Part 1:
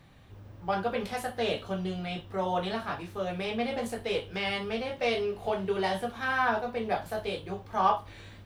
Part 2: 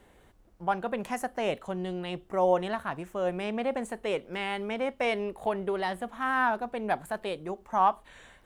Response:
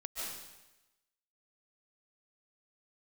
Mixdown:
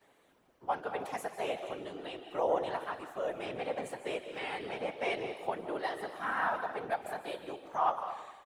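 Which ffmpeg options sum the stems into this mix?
-filter_complex "[0:a]volume=-8dB,asplit=2[a][b];[b]volume=-9dB[c];[1:a]volume=-1,adelay=12,volume=-2dB,asplit=3[d][e][f];[e]volume=-6dB[g];[f]apad=whole_len=372734[h];[a][h]sidechaincompress=threshold=-37dB:ratio=8:attack=16:release=122[i];[2:a]atrim=start_sample=2205[j];[c][g]amix=inputs=2:normalize=0[k];[k][j]afir=irnorm=-1:irlink=0[l];[i][d][l]amix=inputs=3:normalize=0,highpass=330,afftfilt=real='hypot(re,im)*cos(2*PI*random(0))':imag='hypot(re,im)*sin(2*PI*random(1))':win_size=512:overlap=0.75"

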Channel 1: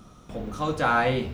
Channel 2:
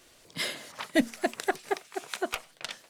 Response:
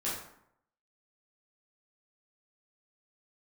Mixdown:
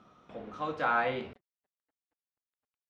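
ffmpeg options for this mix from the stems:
-filter_complex "[0:a]highpass=f=480:p=1,volume=-4.5dB,asplit=2[a][b];[1:a]aeval=exprs='val(0)*sin(2*PI*93*n/s)':c=same,acrusher=bits=3:mix=0:aa=0.5,adelay=400,volume=-10dB[c];[b]apad=whole_len=145514[d];[c][d]sidechaingate=range=-47dB:threshold=-46dB:ratio=16:detection=peak[e];[a][e]amix=inputs=2:normalize=0,lowpass=2.8k"

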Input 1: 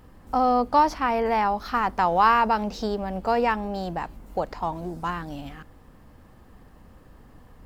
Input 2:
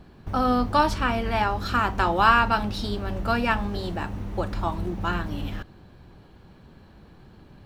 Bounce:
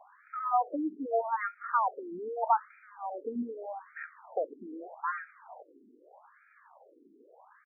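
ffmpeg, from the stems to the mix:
-filter_complex "[0:a]volume=-2dB[a];[1:a]acompressor=threshold=-33dB:ratio=3,alimiter=level_in=6.5dB:limit=-24dB:level=0:latency=1:release=41,volume=-6.5dB,highpass=f=610:t=q:w=1.5,adelay=0.3,volume=1.5dB[b];[a][b]amix=inputs=2:normalize=0,afftfilt=real='re*between(b*sr/1024,300*pow(1800/300,0.5+0.5*sin(2*PI*0.81*pts/sr))/1.41,300*pow(1800/300,0.5+0.5*sin(2*PI*0.81*pts/sr))*1.41)':imag='im*between(b*sr/1024,300*pow(1800/300,0.5+0.5*sin(2*PI*0.81*pts/sr))/1.41,300*pow(1800/300,0.5+0.5*sin(2*PI*0.81*pts/sr))*1.41)':win_size=1024:overlap=0.75"

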